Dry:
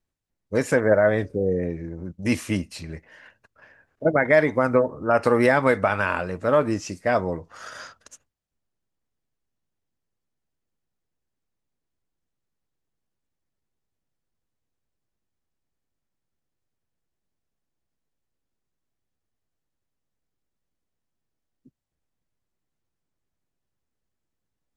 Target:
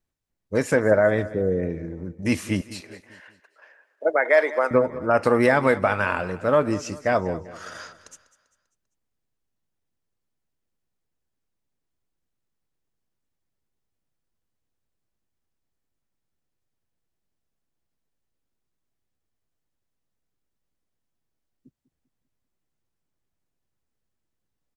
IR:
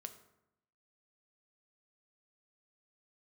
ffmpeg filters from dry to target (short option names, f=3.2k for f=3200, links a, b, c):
-filter_complex "[0:a]asettb=1/sr,asplit=3[a][b][c];[a]atrim=end=2.614[d];[b]atrim=start=2.61:end=4.71,asetpts=PTS-STARTPTS,afade=t=in:d=0.004:c=qsin,afade=t=out:st=2.096:d=0.004:c=qsin,highpass=f=410:w=0.5412,highpass=f=410:w=1.3066[e];[c]atrim=start=4.706[f];[d][e]acrossfade=d=0.004:c1=hsin:c2=qsin[g];[g][f]acrossfade=d=0.004:c1=qsin:c2=hsin,aecho=1:1:197|394|591|788:0.141|0.0636|0.0286|0.0129"